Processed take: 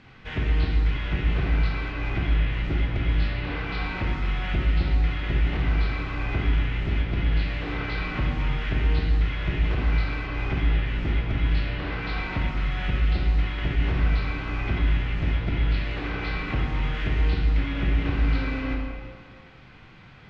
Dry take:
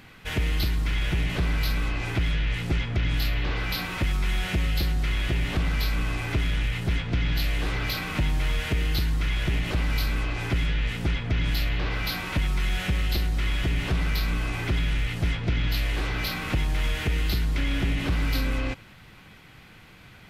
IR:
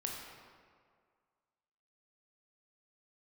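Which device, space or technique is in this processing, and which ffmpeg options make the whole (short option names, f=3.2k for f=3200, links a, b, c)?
swimming-pool hall: -filter_complex "[0:a]lowpass=f=6.2k:w=0.5412,lowpass=f=6.2k:w=1.3066,acrossover=split=3800[a][b];[b]acompressor=threshold=-53dB:ratio=4:attack=1:release=60[c];[a][c]amix=inputs=2:normalize=0[d];[1:a]atrim=start_sample=2205[e];[d][e]afir=irnorm=-1:irlink=0,highshelf=f=4.2k:g=-7,asettb=1/sr,asplit=3[f][g][h];[f]atrim=end=16.934[i];[g]atrim=start=16.93:end=17.39,asetpts=PTS-STARTPTS,afade=t=in:d=0.004:c=qsin,afade=t=out:st=0.456:d=0.004:c=qsin,highshelf=f=11k:g=7.5[j];[h]atrim=start=17.386[k];[i][j]acrossfade=d=0.004:c1=hsin:c2=qsin[l];[l][k]acrossfade=d=0.004:c1=qsin:c2=hsin"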